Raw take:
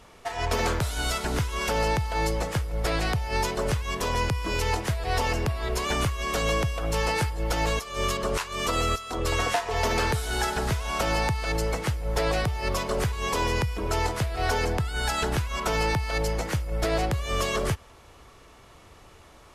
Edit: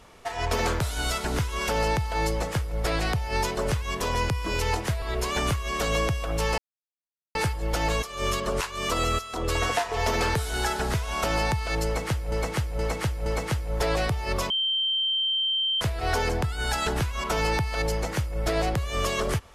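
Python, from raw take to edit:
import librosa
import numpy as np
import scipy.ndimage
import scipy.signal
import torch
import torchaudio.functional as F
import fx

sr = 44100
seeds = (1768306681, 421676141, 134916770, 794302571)

y = fx.edit(x, sr, fx.cut(start_s=5.02, length_s=0.54),
    fx.insert_silence(at_s=7.12, length_s=0.77),
    fx.repeat(start_s=11.62, length_s=0.47, count=4),
    fx.bleep(start_s=12.86, length_s=1.31, hz=3130.0, db=-22.5), tone=tone)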